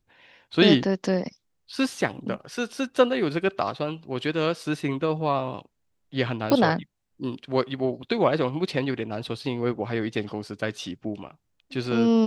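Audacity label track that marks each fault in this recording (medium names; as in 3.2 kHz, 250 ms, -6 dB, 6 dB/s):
6.500000	6.500000	pop -10 dBFS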